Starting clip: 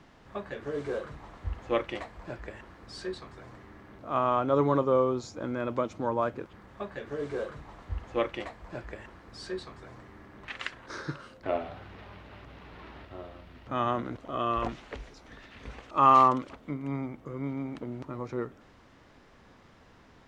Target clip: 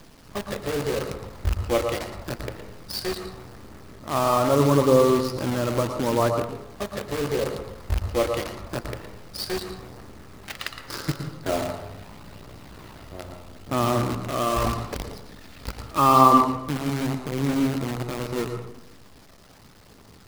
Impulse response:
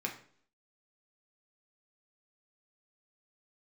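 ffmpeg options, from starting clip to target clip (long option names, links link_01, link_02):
-filter_complex "[0:a]tiltshelf=frequency=750:gain=4,asplit=2[link_01][link_02];[link_02]asoftclip=type=tanh:threshold=-27dB,volume=-10.5dB[link_03];[link_01][link_03]amix=inputs=2:normalize=0,lowpass=frequency=4900:width_type=q:width=5.9,acrusher=bits=6:dc=4:mix=0:aa=0.000001,aphaser=in_gain=1:out_gain=1:delay=1.7:decay=0.21:speed=0.8:type=triangular,asplit=2[link_04][link_05];[1:a]atrim=start_sample=2205,asetrate=23814,aresample=44100,adelay=114[link_06];[link_05][link_06]afir=irnorm=-1:irlink=0,volume=-12dB[link_07];[link_04][link_07]amix=inputs=2:normalize=0,volume=2.5dB"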